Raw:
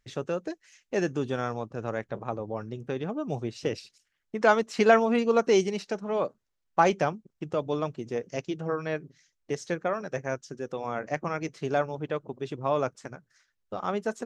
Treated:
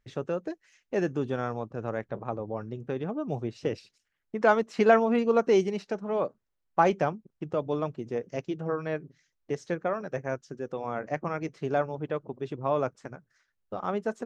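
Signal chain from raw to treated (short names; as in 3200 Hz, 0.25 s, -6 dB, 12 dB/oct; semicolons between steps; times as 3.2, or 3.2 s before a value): high shelf 3000 Hz -10 dB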